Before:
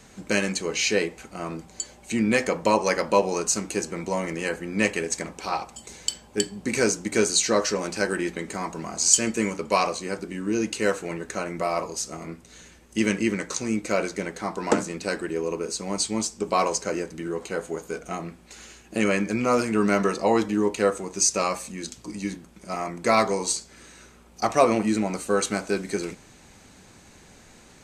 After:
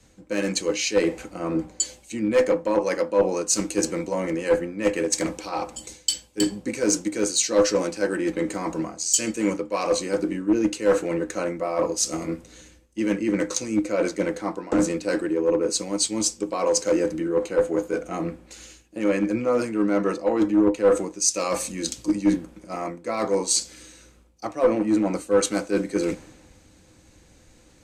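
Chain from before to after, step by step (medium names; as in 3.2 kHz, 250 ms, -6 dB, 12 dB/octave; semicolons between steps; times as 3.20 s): reverse; compression 6:1, threshold -31 dBFS, peak gain reduction 18 dB; reverse; small resonant body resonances 310/510 Hz, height 13 dB, ringing for 95 ms; one-sided clip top -22.5 dBFS; three bands expanded up and down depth 70%; trim +6.5 dB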